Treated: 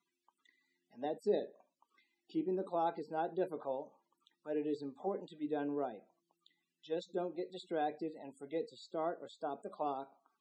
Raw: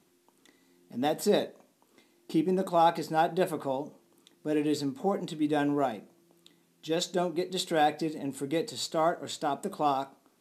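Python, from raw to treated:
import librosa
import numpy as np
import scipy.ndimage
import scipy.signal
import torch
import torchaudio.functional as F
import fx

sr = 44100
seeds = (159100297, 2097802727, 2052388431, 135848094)

y = fx.tone_stack(x, sr, knobs='5-5-5')
y = fx.spec_topn(y, sr, count=64)
y = fx.auto_wah(y, sr, base_hz=420.0, top_hz=1200.0, q=2.1, full_db=-43.0, direction='down')
y = y * 10.0 ** (14.5 / 20.0)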